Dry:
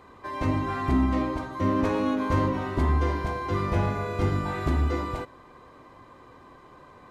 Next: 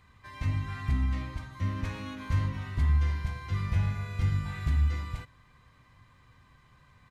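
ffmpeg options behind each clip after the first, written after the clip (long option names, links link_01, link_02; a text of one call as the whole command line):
ffmpeg -i in.wav -af "firequalizer=gain_entry='entry(120,0);entry(330,-22);entry(1900,-4)':delay=0.05:min_phase=1" out.wav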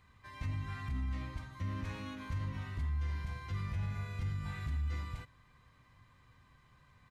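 ffmpeg -i in.wav -af "alimiter=level_in=1dB:limit=-24dB:level=0:latency=1:release=69,volume=-1dB,volume=-4.5dB" out.wav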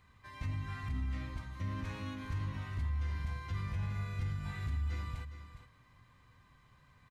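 ffmpeg -i in.wav -af "aecho=1:1:411:0.282" out.wav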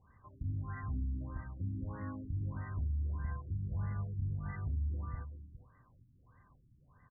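ffmpeg -i in.wav -af "afftfilt=real='re*lt(b*sr/1024,330*pow(2100/330,0.5+0.5*sin(2*PI*1.6*pts/sr)))':imag='im*lt(b*sr/1024,330*pow(2100/330,0.5+0.5*sin(2*PI*1.6*pts/sr)))':win_size=1024:overlap=0.75" out.wav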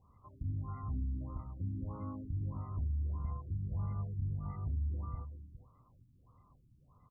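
ffmpeg -i in.wav -af "asuperstop=centerf=1700:order=12:qfactor=2.4" out.wav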